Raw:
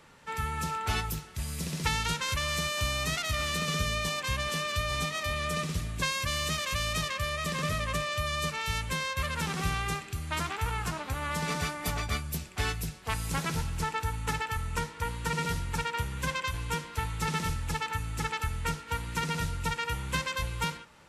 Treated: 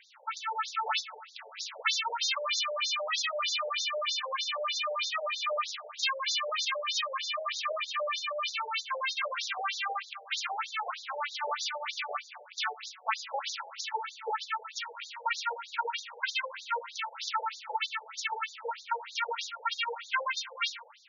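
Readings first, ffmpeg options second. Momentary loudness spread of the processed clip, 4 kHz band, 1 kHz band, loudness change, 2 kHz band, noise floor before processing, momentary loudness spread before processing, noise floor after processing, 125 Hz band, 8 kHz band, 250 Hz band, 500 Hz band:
7 LU, +2.0 dB, +0.5 dB, −1.0 dB, −1.0 dB, −46 dBFS, 5 LU, −52 dBFS, below −40 dB, −3.5 dB, below −35 dB, 0.0 dB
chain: -af "bandreject=frequency=1800:width=19,afftfilt=real='re*between(b*sr/1024,600*pow(5100/600,0.5+0.5*sin(2*PI*3.2*pts/sr))/1.41,600*pow(5100/600,0.5+0.5*sin(2*PI*3.2*pts/sr))*1.41)':imag='im*between(b*sr/1024,600*pow(5100/600,0.5+0.5*sin(2*PI*3.2*pts/sr))/1.41,600*pow(5100/600,0.5+0.5*sin(2*PI*3.2*pts/sr))*1.41)':win_size=1024:overlap=0.75,volume=7.5dB"

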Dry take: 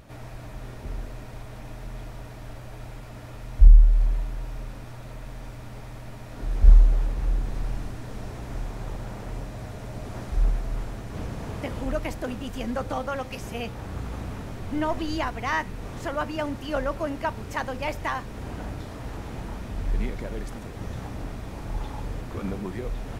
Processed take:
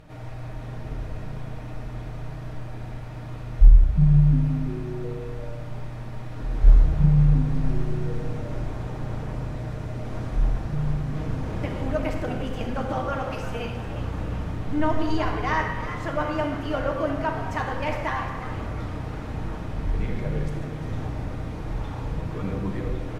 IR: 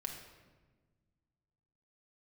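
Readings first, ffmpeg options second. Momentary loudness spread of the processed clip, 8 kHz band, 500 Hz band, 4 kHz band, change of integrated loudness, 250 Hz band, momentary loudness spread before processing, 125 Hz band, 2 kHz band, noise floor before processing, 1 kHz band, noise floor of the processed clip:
17 LU, can't be measured, +3.0 dB, −0.5 dB, +2.0 dB, +6.0 dB, 16 LU, +6.0 dB, +1.5 dB, −40 dBFS, +2.5 dB, −35 dBFS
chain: -filter_complex "[0:a]lowpass=frequency=3900:poles=1,asplit=6[link_01][link_02][link_03][link_04][link_05][link_06];[link_02]adelay=353,afreqshift=110,volume=-12dB[link_07];[link_03]adelay=706,afreqshift=220,volume=-18.7dB[link_08];[link_04]adelay=1059,afreqshift=330,volume=-25.5dB[link_09];[link_05]adelay=1412,afreqshift=440,volume=-32.2dB[link_10];[link_06]adelay=1765,afreqshift=550,volume=-39dB[link_11];[link_01][link_07][link_08][link_09][link_10][link_11]amix=inputs=6:normalize=0[link_12];[1:a]atrim=start_sample=2205,afade=type=out:start_time=0.31:duration=0.01,atrim=end_sample=14112,asetrate=32193,aresample=44100[link_13];[link_12][link_13]afir=irnorm=-1:irlink=0,volume=1dB"

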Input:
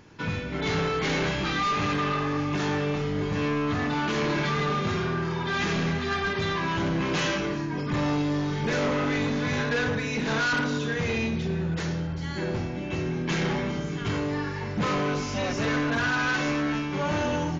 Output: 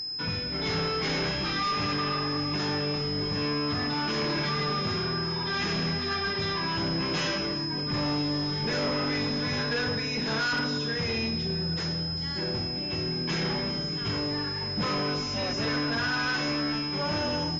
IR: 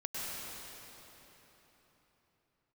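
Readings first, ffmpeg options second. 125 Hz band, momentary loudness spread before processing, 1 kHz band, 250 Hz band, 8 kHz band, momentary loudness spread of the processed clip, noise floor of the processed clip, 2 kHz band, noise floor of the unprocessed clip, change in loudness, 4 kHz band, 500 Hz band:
−3.5 dB, 5 LU, −3.5 dB, −3.5 dB, can't be measured, 3 LU, −32 dBFS, −3.5 dB, −32 dBFS, −1.0 dB, +6.5 dB, −3.5 dB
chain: -af "acontrast=42,aeval=exprs='val(0)+0.0708*sin(2*PI*5100*n/s)':channel_layout=same,volume=-9dB" -ar 48000 -c:a libopus -b:a 48k

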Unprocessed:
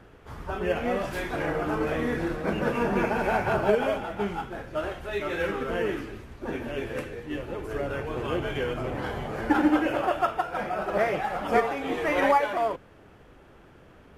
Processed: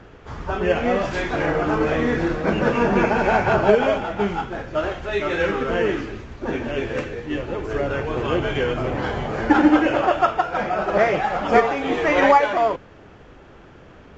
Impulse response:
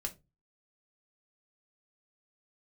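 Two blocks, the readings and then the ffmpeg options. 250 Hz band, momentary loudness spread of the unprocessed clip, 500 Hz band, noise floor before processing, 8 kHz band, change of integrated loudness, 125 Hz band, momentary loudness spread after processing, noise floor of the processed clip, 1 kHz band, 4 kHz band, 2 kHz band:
+7.0 dB, 11 LU, +7.0 dB, −53 dBFS, can't be measured, +7.0 dB, +7.0 dB, 11 LU, −46 dBFS, +7.0 dB, +7.0 dB, +7.0 dB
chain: -af "volume=7dB" -ar 16000 -c:a libvorbis -b:a 96k

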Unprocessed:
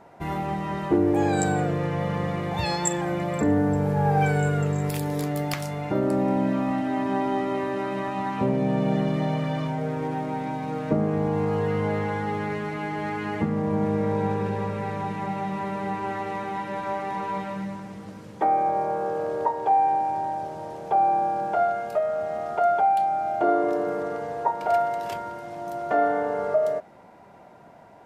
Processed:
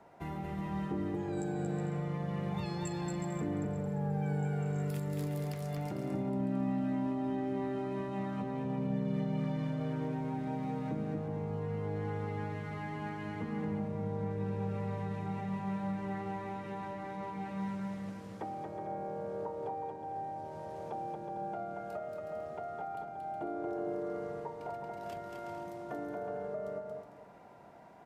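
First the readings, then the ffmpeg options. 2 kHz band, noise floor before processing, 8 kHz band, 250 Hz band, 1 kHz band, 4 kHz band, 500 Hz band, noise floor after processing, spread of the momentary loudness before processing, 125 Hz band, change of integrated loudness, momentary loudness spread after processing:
−14.5 dB, −48 dBFS, can't be measured, −9.0 dB, −16.5 dB, −14.5 dB, −13.0 dB, −46 dBFS, 8 LU, −8.0 dB, −12.0 dB, 8 LU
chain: -filter_complex "[0:a]acrossover=split=120|320[link_01][link_02][link_03];[link_01]acompressor=threshold=-38dB:ratio=4[link_04];[link_02]acompressor=threshold=-26dB:ratio=4[link_05];[link_03]acompressor=threshold=-36dB:ratio=4[link_06];[link_04][link_05][link_06]amix=inputs=3:normalize=0,alimiter=limit=-21dB:level=0:latency=1:release=236,aecho=1:1:230|368|450.8|500.5|530.3:0.631|0.398|0.251|0.158|0.1,volume=-8dB"

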